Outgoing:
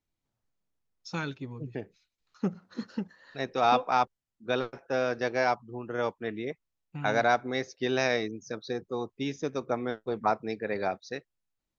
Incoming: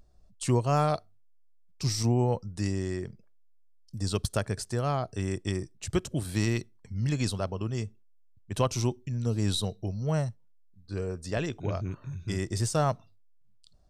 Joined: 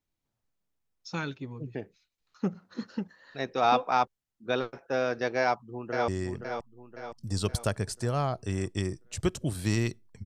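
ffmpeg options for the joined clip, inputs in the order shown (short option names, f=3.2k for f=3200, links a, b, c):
-filter_complex "[0:a]apad=whole_dur=10.25,atrim=end=10.25,atrim=end=6.082[a];[1:a]atrim=start=2.778:end=6.95[b];[a][b]acrossfade=d=0.004:c1=hsin:c2=hsin,asplit=2[c][d];[d]afade=t=in:st=5.4:d=0.01,afade=t=out:st=6.08:d=0.01,aecho=0:1:520|1040|1560|2080|2600|3120:0.473151|0.236576|0.118288|0.0591439|0.029572|0.014786[e];[c][e]amix=inputs=2:normalize=0"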